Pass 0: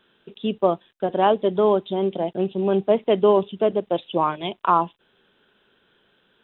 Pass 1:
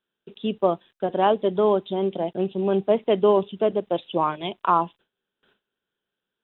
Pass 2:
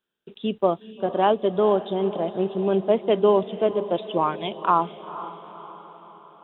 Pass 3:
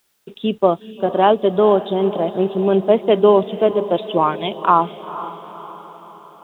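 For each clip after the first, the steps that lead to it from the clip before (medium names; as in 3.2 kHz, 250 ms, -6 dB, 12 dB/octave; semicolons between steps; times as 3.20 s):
gate with hold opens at -51 dBFS; trim -1.5 dB
echo that smears into a reverb 469 ms, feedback 53%, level -14 dB
word length cut 12-bit, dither triangular; trim +6 dB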